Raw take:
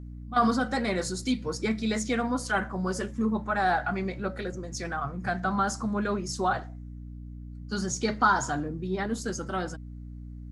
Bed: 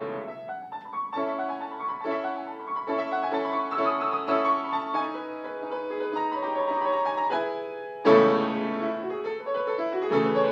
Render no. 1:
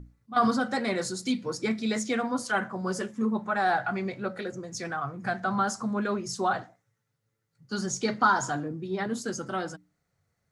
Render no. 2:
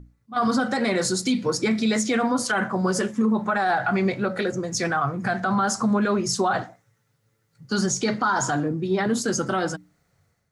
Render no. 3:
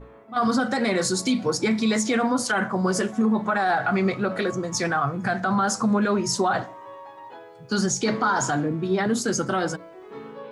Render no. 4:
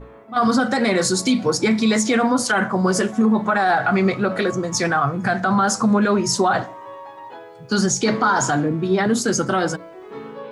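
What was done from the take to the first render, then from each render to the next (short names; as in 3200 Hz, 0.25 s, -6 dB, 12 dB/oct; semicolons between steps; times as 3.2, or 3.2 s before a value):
notches 60/120/180/240/300 Hz
AGC gain up to 10.5 dB; limiter -14 dBFS, peak gain reduction 11 dB
add bed -16 dB
gain +4.5 dB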